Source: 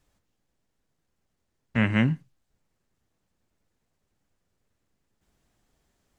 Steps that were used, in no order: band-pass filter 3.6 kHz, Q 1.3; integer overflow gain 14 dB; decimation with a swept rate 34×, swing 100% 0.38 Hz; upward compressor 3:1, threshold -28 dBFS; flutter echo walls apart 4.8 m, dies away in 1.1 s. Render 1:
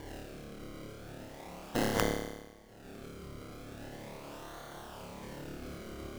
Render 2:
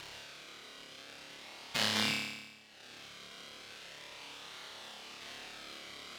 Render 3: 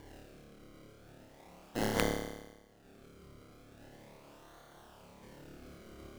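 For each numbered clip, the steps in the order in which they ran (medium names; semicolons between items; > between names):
band-pass filter > upward compressor > decimation with a swept rate > flutter echo > integer overflow; decimation with a swept rate > band-pass filter > integer overflow > upward compressor > flutter echo; upward compressor > band-pass filter > decimation with a swept rate > flutter echo > integer overflow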